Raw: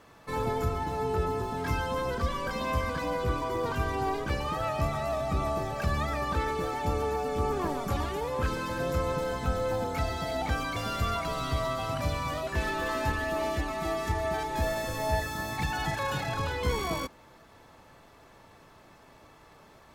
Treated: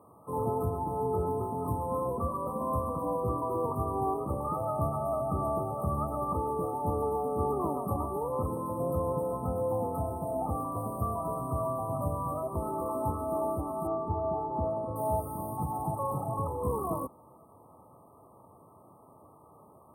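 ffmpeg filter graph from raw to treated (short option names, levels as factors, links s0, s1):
-filter_complex "[0:a]asettb=1/sr,asplit=3[s0][s1][s2];[s0]atrim=end=13.874[s3];[s1]atrim=start=13.87:end=14.96,asetpts=PTS-STARTPTS,afade=t=in:d=0.004:c=qsin,afade=t=out:st=1.086:d=0.004:c=qsin,adynamicsmooth=sensitivity=3.5:basefreq=2700,highshelf=f=7700:g=-11.5[s4];[s2]atrim=start=14.956[s5];[s3][s4]acrossfade=d=0.004:c1=hsin:c2=qsin[s6];[s6][s5]acrossfade=d=0.004:c1=qsin:c2=hsin,highpass=f=80:w=0.5412,highpass=f=80:w=1.3066,afftfilt=real='re*(1-between(b*sr/4096,1300,8300))':imag='im*(1-between(b*sr/4096,1300,8300))':win_size=4096:overlap=0.75"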